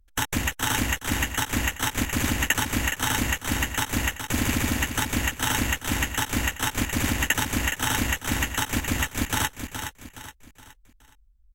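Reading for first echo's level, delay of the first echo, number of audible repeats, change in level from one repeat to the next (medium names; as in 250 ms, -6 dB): -8.0 dB, 419 ms, 4, -8.0 dB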